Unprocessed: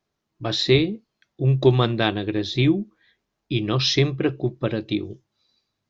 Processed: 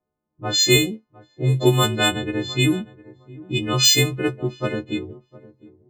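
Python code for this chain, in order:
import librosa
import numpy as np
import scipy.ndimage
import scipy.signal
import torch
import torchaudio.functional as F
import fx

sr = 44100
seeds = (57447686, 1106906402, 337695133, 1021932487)

p1 = fx.freq_snap(x, sr, grid_st=3)
p2 = np.repeat(scipy.signal.resample_poly(p1, 1, 4), 4)[:len(p1)]
p3 = p2 + fx.echo_feedback(p2, sr, ms=709, feedback_pct=20, wet_db=-20.0, dry=0)
y = fx.env_lowpass(p3, sr, base_hz=780.0, full_db=-12.0)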